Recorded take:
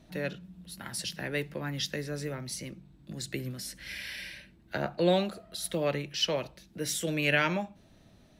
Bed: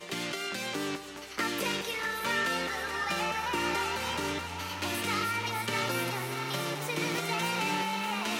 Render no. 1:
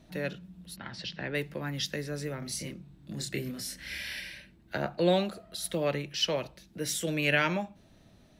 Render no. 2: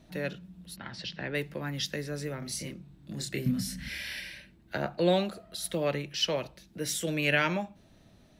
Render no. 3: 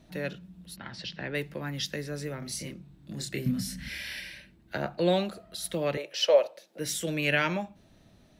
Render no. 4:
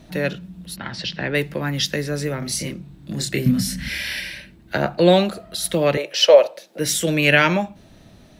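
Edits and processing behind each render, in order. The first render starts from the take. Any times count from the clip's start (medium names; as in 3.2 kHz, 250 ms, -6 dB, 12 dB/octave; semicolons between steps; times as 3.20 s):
0.76–1.35 s: low-pass 4.5 kHz 24 dB/octave; 2.39–4.20 s: doubling 28 ms -2.5 dB
3.46–3.89 s: resonant low shelf 280 Hz +9.5 dB, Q 3
5.97–6.79 s: resonant high-pass 550 Hz, resonance Q 4.8
trim +11 dB; peak limiter -1 dBFS, peak gain reduction 2 dB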